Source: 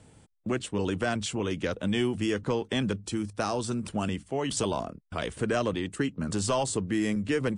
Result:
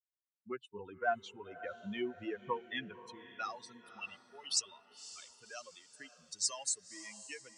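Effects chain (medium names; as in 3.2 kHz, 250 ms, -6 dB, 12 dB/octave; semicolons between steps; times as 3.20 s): expander on every frequency bin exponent 3; band-pass sweep 920 Hz -> 6 kHz, 2.19–4.80 s; echo that smears into a reverb 548 ms, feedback 45%, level -15 dB; trim +9.5 dB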